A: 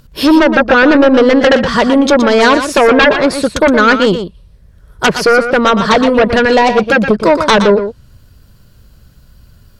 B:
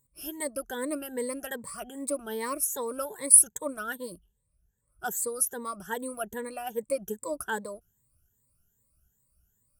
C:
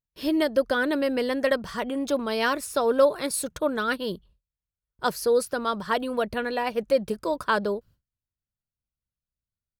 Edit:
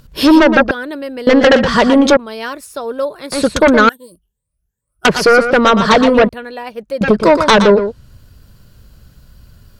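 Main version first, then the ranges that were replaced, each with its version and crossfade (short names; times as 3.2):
A
0.71–1.27 from C
2.17–3.32 from C
3.89–5.05 from B
6.29–7.01 from C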